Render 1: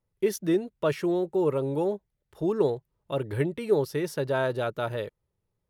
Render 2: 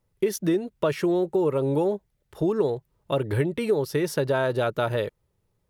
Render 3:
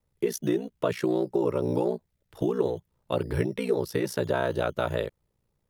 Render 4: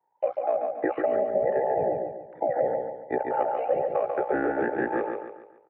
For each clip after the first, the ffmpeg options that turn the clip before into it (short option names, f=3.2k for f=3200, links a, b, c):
-af "acompressor=threshold=-28dB:ratio=4,volume=7.5dB"
-filter_complex "[0:a]acrossover=split=170[a][b];[a]acrusher=samples=11:mix=1:aa=0.000001:lfo=1:lforange=6.6:lforate=0.49[c];[c][b]amix=inputs=2:normalize=0,aeval=exprs='val(0)*sin(2*PI*30*n/s)':c=same"
-filter_complex "[0:a]afftfilt=real='real(if(between(b,1,1008),(2*floor((b-1)/48)+1)*48-b,b),0)':imag='imag(if(between(b,1,1008),(2*floor((b-1)/48)+1)*48-b,b),0)*if(between(b,1,1008),-1,1)':win_size=2048:overlap=0.75,asplit=2[a][b];[b]aecho=0:1:142|284|426|568|710:0.596|0.238|0.0953|0.0381|0.0152[c];[a][c]amix=inputs=2:normalize=0,highpass=f=210:t=q:w=0.5412,highpass=f=210:t=q:w=1.307,lowpass=f=2.1k:t=q:w=0.5176,lowpass=f=2.1k:t=q:w=0.7071,lowpass=f=2.1k:t=q:w=1.932,afreqshift=-69"